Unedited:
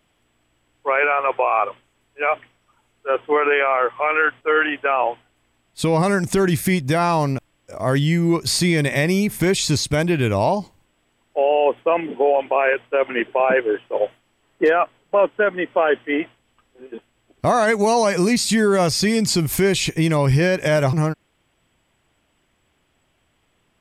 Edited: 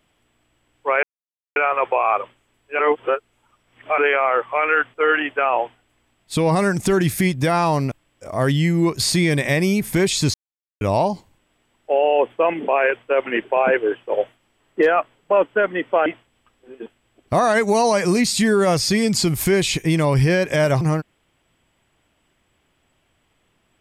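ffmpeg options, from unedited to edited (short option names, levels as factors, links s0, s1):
-filter_complex "[0:a]asplit=8[s0][s1][s2][s3][s4][s5][s6][s7];[s0]atrim=end=1.03,asetpts=PTS-STARTPTS,afade=t=out:st=1.026:d=0.004:c=hsin,apad=pad_dur=0.53[s8];[s1]atrim=start=1.03:end=2.262,asetpts=PTS-STARTPTS,afade=t=in:d=0.004:c=hsin[s9];[s2]atrim=start=2.258:end=3.452,asetpts=PTS-STARTPTS,areverse[s10];[s3]atrim=start=3.448:end=9.81,asetpts=PTS-STARTPTS,afade=t=out:st=6.358:d=0.004:c=hsin[s11];[s4]atrim=start=9.81:end=10.28,asetpts=PTS-STARTPTS,volume=0[s12];[s5]atrim=start=10.28:end=12.152,asetpts=PTS-STARTPTS,afade=t=in:d=0.004:c=hsin[s13];[s6]atrim=start=12.508:end=15.892[s14];[s7]atrim=start=16.178[s15];[s8][s9]concat=n=2:v=0:a=1[s16];[s16][s10]acrossfade=d=0.004:c1=hsin:c2=hsin[s17];[s11][s12][s13]concat=n=3:v=0:a=1[s18];[s17][s18]acrossfade=d=0.004:c1=hsin:c2=hsin[s19];[s19][s14]acrossfade=d=0.004:c1=hsin:c2=hsin[s20];[s20][s15]acrossfade=d=0.004:c1=hsin:c2=hsin"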